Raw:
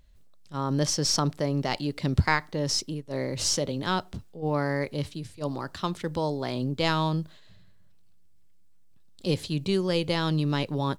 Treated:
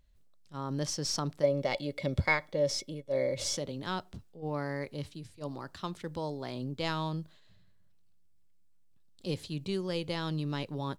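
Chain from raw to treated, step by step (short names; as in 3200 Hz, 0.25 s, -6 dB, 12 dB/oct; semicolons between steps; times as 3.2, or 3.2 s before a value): 1.43–3.57 small resonant body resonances 560/2200/3400 Hz, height 17 dB, ringing for 50 ms; gain -8 dB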